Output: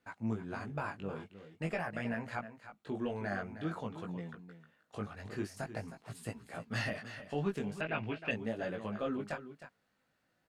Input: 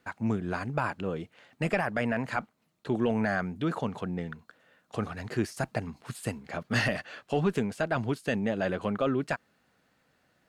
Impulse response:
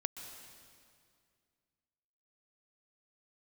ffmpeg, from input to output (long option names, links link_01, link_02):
-filter_complex "[0:a]aecho=1:1:312:0.251,flanger=delay=17.5:depth=2.8:speed=0.47,asettb=1/sr,asplit=3[link_01][link_02][link_03];[link_01]atrim=end=7.814[link_04];[link_02]atrim=start=7.81:end=8.31,asetpts=PTS-STARTPTS,afade=type=in:duration=0.004:curve=qsin,afade=type=out:start_time=0.496:duration=0.004:curve=qsin,lowpass=frequency=2600:width_type=q:width=4.9[link_05];[link_03]atrim=start=8.306[link_06];[link_04][link_05]acrossfade=duration=0.004:curve1=hsin:curve2=qsin[link_07];[link_07][link_06]acrossfade=duration=0.004:curve1=qsin:curve2=hsin,volume=-6dB"